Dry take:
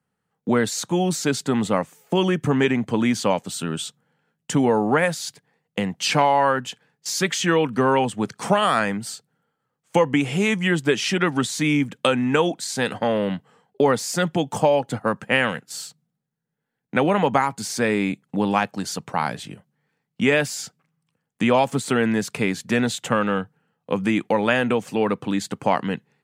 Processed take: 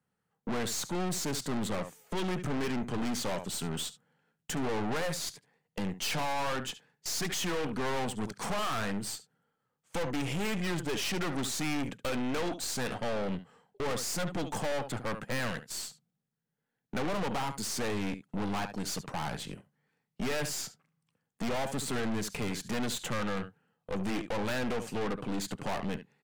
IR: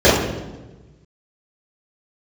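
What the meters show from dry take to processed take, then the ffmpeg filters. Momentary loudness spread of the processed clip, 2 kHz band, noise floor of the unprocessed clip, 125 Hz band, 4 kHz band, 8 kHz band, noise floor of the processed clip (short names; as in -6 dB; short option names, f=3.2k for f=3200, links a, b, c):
6 LU, -12.5 dB, -79 dBFS, -10.5 dB, -8.5 dB, -6.5 dB, -84 dBFS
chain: -af "aecho=1:1:71:0.15,aeval=exprs='(tanh(31.6*val(0)+0.65)-tanh(0.65))/31.6':c=same,volume=-1dB"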